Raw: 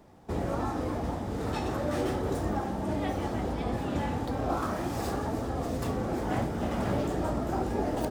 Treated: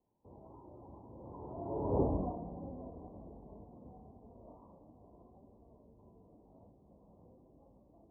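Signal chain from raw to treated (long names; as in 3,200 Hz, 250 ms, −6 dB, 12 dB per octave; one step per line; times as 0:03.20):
source passing by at 0:02.01, 49 m/s, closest 4.9 metres
elliptic low-pass filter 990 Hz, stop band 40 dB
level +1.5 dB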